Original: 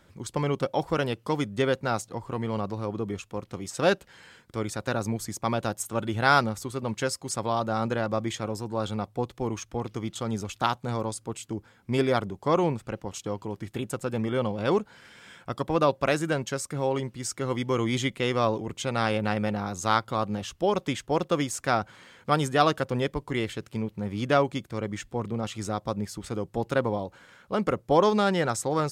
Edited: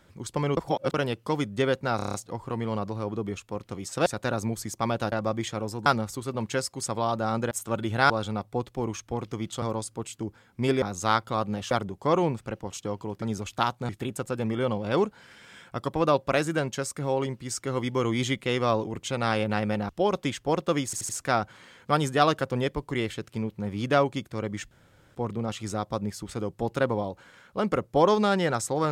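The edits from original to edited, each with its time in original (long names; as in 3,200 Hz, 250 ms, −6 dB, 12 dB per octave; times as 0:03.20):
0:00.57–0:00.94: reverse
0:01.96: stutter 0.03 s, 7 plays
0:03.88–0:04.69: remove
0:05.75–0:06.34: swap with 0:07.99–0:08.73
0:10.25–0:10.92: move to 0:13.63
0:19.63–0:20.52: move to 0:12.12
0:21.48: stutter 0.08 s, 4 plays
0:25.10: splice in room tone 0.44 s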